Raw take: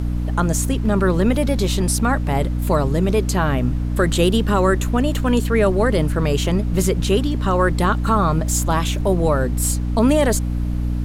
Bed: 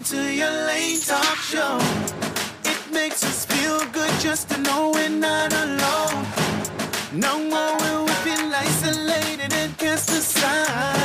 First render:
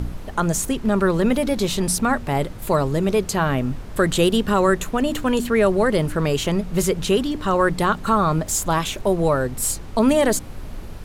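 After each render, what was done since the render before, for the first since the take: de-hum 60 Hz, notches 5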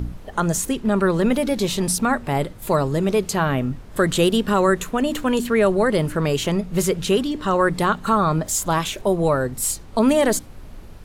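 noise print and reduce 6 dB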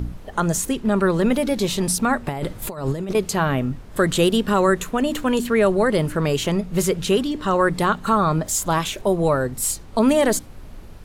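2.27–3.15 negative-ratio compressor -24 dBFS, ratio -0.5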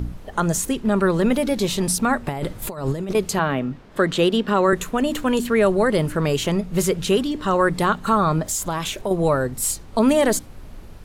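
3.39–4.73 three-band isolator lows -12 dB, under 150 Hz, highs -12 dB, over 5300 Hz; 8.51–9.11 compressor 5:1, threshold -20 dBFS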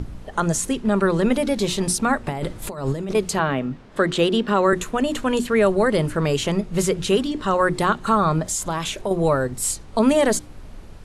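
LPF 11000 Hz 24 dB/oct; notches 60/120/180/240/300/360 Hz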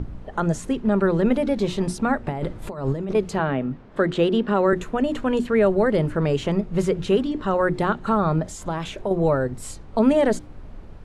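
LPF 1500 Hz 6 dB/oct; dynamic EQ 1100 Hz, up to -5 dB, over -39 dBFS, Q 4.9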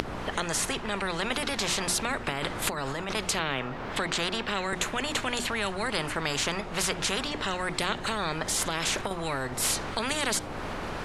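upward compressor, threshold -22 dBFS; spectral compressor 4:1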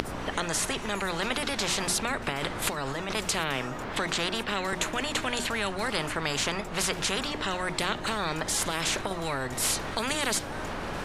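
add bed -23 dB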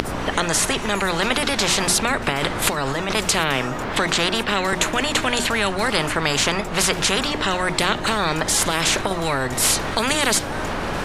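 gain +9 dB; limiter -1 dBFS, peak gain reduction 2.5 dB

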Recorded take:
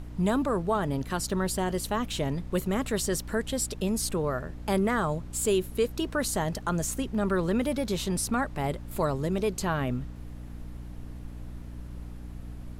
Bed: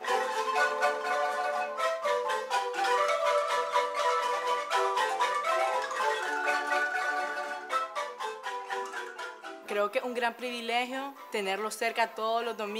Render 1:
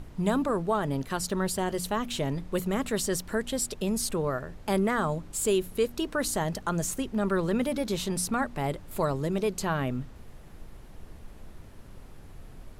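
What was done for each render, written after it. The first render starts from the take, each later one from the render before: de-hum 60 Hz, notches 5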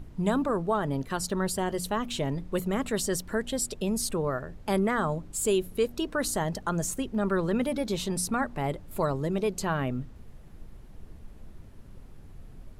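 denoiser 6 dB, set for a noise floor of -47 dBFS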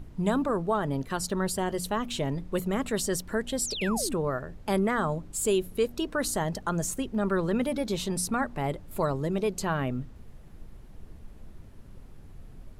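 3.65–4.15 painted sound fall 210–8000 Hz -35 dBFS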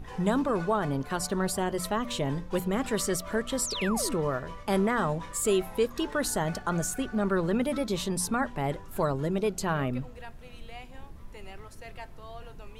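add bed -16 dB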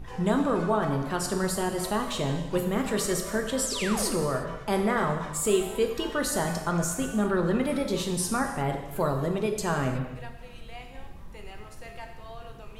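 non-linear reverb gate 0.39 s falling, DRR 3.5 dB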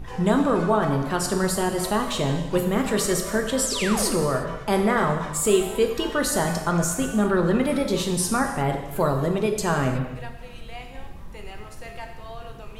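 gain +4.5 dB

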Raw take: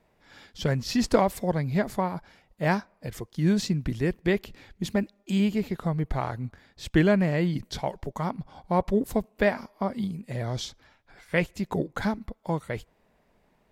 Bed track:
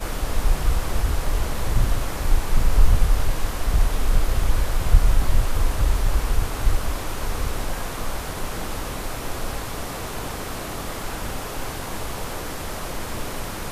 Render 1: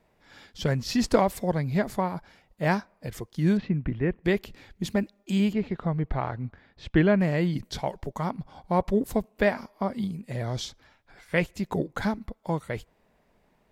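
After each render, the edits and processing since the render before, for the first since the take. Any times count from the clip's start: 3.57–4.24 LPF 2500 Hz 24 dB/oct; 5.53–7.21 LPF 3100 Hz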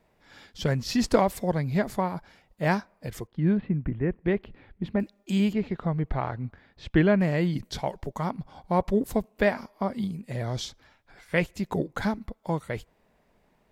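3.27–5 air absorption 460 m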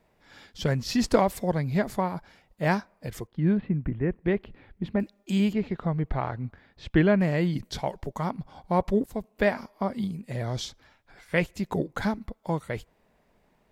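9.06–9.57 fade in equal-power, from -13.5 dB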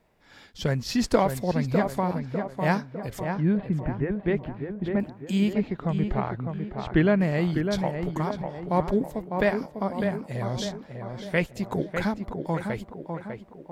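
tape echo 0.601 s, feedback 55%, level -4.5 dB, low-pass 1700 Hz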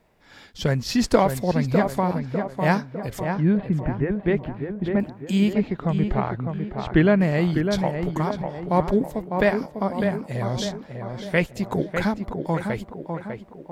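gain +3.5 dB

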